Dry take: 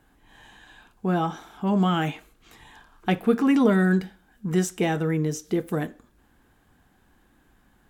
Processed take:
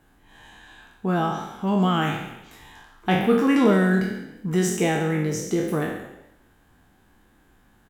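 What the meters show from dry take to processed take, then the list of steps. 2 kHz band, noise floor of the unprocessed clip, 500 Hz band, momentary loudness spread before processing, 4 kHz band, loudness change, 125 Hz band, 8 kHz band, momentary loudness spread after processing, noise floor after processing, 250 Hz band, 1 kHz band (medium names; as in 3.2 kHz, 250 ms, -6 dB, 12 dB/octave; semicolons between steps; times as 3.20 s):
+3.5 dB, -62 dBFS, +2.5 dB, 13 LU, +3.5 dB, +1.5 dB, +1.0 dB, +4.5 dB, 14 LU, -59 dBFS, +1.0 dB, +3.0 dB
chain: spectral sustain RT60 0.80 s; frequency-shifting echo 137 ms, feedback 33%, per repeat +41 Hz, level -14 dB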